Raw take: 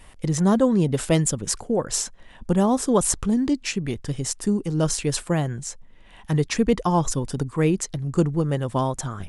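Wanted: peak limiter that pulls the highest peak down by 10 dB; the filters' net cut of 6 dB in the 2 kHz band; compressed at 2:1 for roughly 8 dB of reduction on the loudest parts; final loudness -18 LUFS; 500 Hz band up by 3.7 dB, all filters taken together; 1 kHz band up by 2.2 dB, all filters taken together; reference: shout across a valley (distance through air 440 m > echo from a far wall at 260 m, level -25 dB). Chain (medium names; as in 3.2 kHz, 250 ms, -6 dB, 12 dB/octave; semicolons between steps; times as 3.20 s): peaking EQ 500 Hz +5 dB; peaking EQ 1 kHz +4 dB; peaking EQ 2 kHz -3.5 dB; compression 2:1, threshold -25 dBFS; peak limiter -18.5 dBFS; distance through air 440 m; echo from a far wall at 260 m, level -25 dB; trim +12 dB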